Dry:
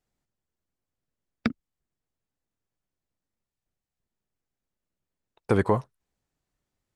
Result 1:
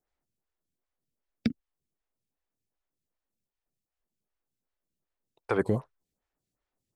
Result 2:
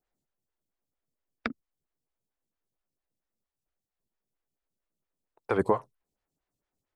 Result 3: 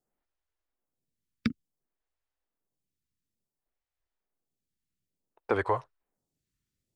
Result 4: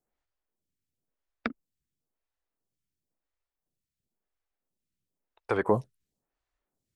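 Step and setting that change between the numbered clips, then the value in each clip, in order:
photocell phaser, rate: 2.6, 4.4, 0.57, 0.97 Hz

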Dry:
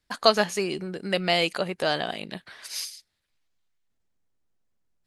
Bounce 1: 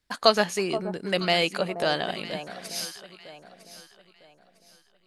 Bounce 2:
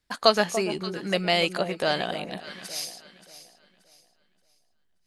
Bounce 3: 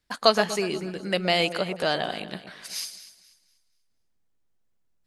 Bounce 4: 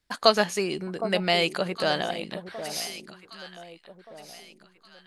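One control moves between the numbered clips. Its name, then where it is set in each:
echo with dull and thin repeats by turns, time: 0.477, 0.289, 0.121, 0.763 s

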